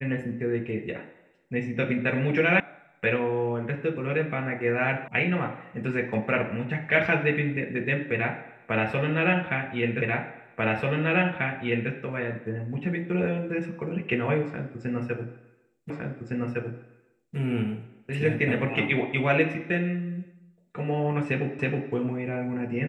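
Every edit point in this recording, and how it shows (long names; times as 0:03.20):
0:02.60: cut off before it has died away
0:05.08: cut off before it has died away
0:10.02: the same again, the last 1.89 s
0:15.90: the same again, the last 1.46 s
0:21.59: the same again, the last 0.32 s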